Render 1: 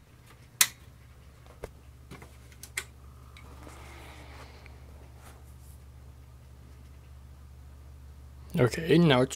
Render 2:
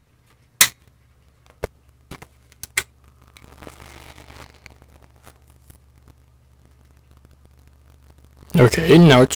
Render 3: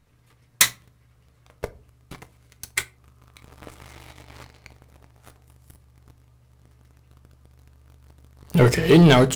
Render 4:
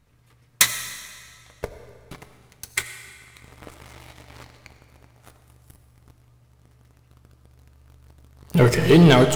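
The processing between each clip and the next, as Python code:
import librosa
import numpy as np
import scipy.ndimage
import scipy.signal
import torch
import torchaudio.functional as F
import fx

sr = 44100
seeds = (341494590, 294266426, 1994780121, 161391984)

y1 = fx.leveller(x, sr, passes=3)
y1 = y1 * librosa.db_to_amplitude(2.5)
y2 = fx.room_shoebox(y1, sr, seeds[0], volume_m3=170.0, walls='furnished', distance_m=0.37)
y2 = y2 * librosa.db_to_amplitude(-3.5)
y3 = fx.rev_freeverb(y2, sr, rt60_s=2.0, hf_ratio=0.95, predelay_ms=40, drr_db=9.5)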